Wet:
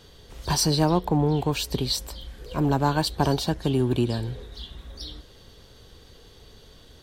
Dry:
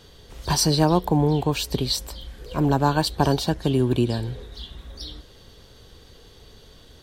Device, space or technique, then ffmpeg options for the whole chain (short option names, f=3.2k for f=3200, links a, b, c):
parallel distortion: -filter_complex "[0:a]asplit=2[a][b];[b]asoftclip=type=hard:threshold=-21dB,volume=-11dB[c];[a][c]amix=inputs=2:normalize=0,asettb=1/sr,asplit=3[d][e][f];[d]atrim=end=0.914[g];[e]atrim=start=0.91:end=1.37,asetpts=PTS-STARTPTS,afade=t=in:d=0.004:c=qsin,afade=t=out:st=0.456:d=0.004:c=qsin,highshelf=f=8.1k:g=-9[h];[f]atrim=start=1.366[i];[g][h]acrossfade=d=0.004:c1=hsin:c2=qsin[j];[j][i]acrossfade=d=0.004:c1=qsin:c2=hsin,volume=-3.5dB"